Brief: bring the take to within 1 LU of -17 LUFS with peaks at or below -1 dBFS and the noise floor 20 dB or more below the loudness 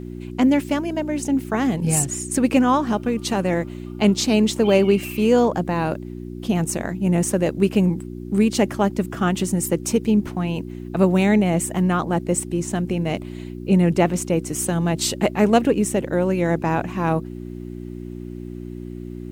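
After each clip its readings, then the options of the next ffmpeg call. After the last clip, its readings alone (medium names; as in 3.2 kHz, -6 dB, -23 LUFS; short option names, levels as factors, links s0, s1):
hum 60 Hz; highest harmonic 360 Hz; hum level -31 dBFS; loudness -20.5 LUFS; peak level -2.0 dBFS; loudness target -17.0 LUFS
-> -af "bandreject=f=60:t=h:w=4,bandreject=f=120:t=h:w=4,bandreject=f=180:t=h:w=4,bandreject=f=240:t=h:w=4,bandreject=f=300:t=h:w=4,bandreject=f=360:t=h:w=4"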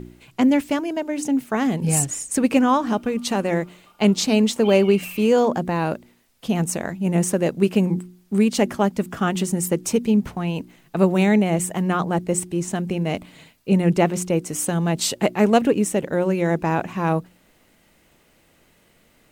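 hum not found; loudness -21.0 LUFS; peak level -2.0 dBFS; loudness target -17.0 LUFS
-> -af "volume=1.58,alimiter=limit=0.891:level=0:latency=1"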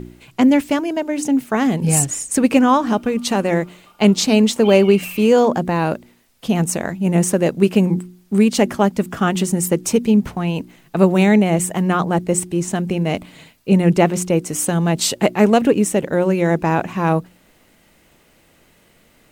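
loudness -17.0 LUFS; peak level -1.0 dBFS; noise floor -55 dBFS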